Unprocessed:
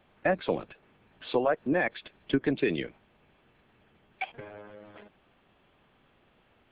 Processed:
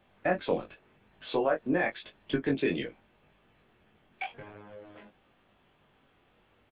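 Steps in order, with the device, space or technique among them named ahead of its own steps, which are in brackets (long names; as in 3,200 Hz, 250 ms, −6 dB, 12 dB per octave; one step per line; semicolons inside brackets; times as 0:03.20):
double-tracked vocal (double-tracking delay 19 ms −11.5 dB; chorus effect 0.88 Hz, delay 20 ms, depth 3.1 ms)
level +1.5 dB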